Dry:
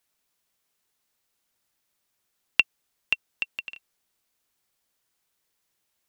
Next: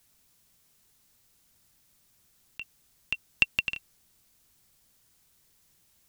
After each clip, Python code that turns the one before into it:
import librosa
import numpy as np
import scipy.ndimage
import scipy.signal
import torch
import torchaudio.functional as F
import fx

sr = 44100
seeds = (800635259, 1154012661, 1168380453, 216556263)

y = fx.bass_treble(x, sr, bass_db=13, treble_db=5)
y = fx.over_compress(y, sr, threshold_db=-25.0, ratio=-0.5)
y = y * librosa.db_to_amplitude(1.5)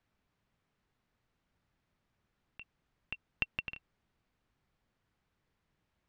y = scipy.signal.sosfilt(scipy.signal.butter(2, 2000.0, 'lowpass', fs=sr, output='sos'), x)
y = y * librosa.db_to_amplitude(-4.5)